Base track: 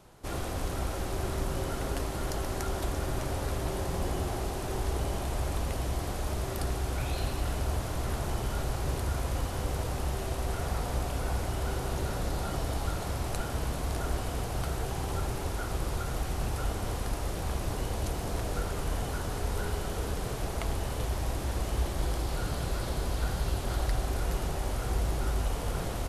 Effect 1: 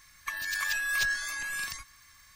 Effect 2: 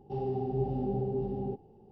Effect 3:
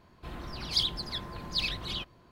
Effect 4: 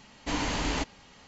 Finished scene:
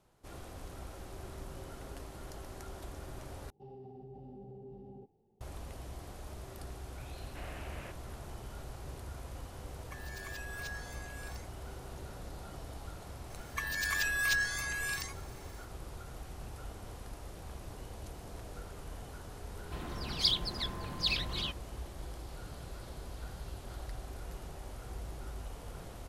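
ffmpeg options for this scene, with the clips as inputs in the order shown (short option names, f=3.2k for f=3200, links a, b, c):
-filter_complex "[1:a]asplit=2[a][b];[0:a]volume=-13.5dB[c];[2:a]alimiter=level_in=4dB:limit=-24dB:level=0:latency=1:release=27,volume=-4dB[d];[4:a]highpass=f=370:t=q:w=0.5412,highpass=f=370:t=q:w=1.307,lowpass=f=3.3k:t=q:w=0.5176,lowpass=f=3.3k:t=q:w=0.7071,lowpass=f=3.3k:t=q:w=1.932,afreqshift=-280[e];[c]asplit=2[f][g];[f]atrim=end=3.504[h];[d]atrim=end=1.91,asetpts=PTS-STARTPTS,volume=-15dB[i];[g]atrim=start=5.406[j];[e]atrim=end=1.27,asetpts=PTS-STARTPTS,volume=-15dB,afade=t=in:d=0.004:c=hsin,afade=t=out:st=1.266:d=0.004:c=hsin,adelay=7080[k];[a]atrim=end=2.35,asetpts=PTS-STARTPTS,volume=-15.5dB,afade=t=in:d=0.004:c=hsin,afade=t=out:st=2.346:d=0.004:c=hsin,adelay=9640[l];[b]atrim=end=2.35,asetpts=PTS-STARTPTS,volume=-2dB,afade=t=in:d=0.004:c=hsin,afade=t=out:st=2.346:d=0.004:c=hsin,adelay=13300[m];[3:a]atrim=end=2.31,asetpts=PTS-STARTPTS,volume=-1dB,afade=t=in:d=0.004:c=hsin,afade=t=out:st=2.306:d=0.004:c=hsin,adelay=19480[n];[h][i]acrossfade=d=0.004:c1=hsin:c2=hsin[o];[o][j]acrossfade=d=0.004:c1=hsin:c2=hsin[p];[p][k][l][m][n]amix=inputs=5:normalize=0"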